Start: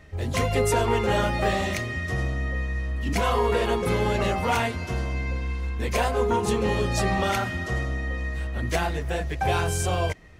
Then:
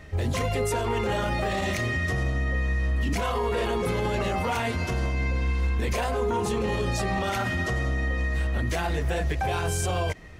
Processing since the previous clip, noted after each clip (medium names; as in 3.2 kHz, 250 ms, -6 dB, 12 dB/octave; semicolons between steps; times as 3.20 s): peak limiter -23 dBFS, peak gain reduction 11 dB; trim +4.5 dB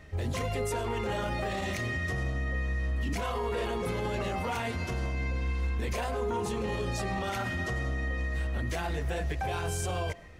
reverberation RT60 0.70 s, pre-delay 70 ms, DRR 19.5 dB; trim -5.5 dB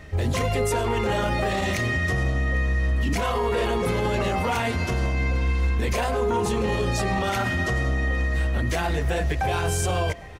delay 802 ms -23.5 dB; trim +8 dB